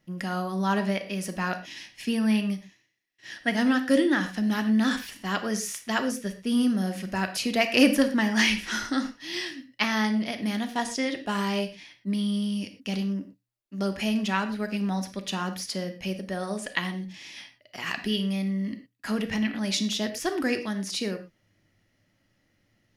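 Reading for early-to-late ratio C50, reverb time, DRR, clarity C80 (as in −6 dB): 11.0 dB, non-exponential decay, 7.0 dB, 14.5 dB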